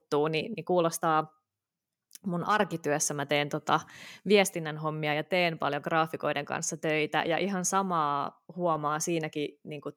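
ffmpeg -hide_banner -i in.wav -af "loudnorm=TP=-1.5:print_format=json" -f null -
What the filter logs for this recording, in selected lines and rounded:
"input_i" : "-29.3",
"input_tp" : "-9.5",
"input_lra" : "1.8",
"input_thresh" : "-39.6",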